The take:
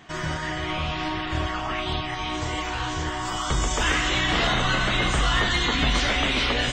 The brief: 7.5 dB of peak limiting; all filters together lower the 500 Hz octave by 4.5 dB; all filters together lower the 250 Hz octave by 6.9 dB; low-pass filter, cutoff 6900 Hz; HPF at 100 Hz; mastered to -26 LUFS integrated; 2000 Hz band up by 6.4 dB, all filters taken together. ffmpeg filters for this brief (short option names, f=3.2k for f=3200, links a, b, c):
-af "highpass=100,lowpass=6.9k,equalizer=f=250:t=o:g=-8,equalizer=f=500:t=o:g=-4.5,equalizer=f=2k:t=o:g=8,volume=-2.5dB,alimiter=limit=-17dB:level=0:latency=1"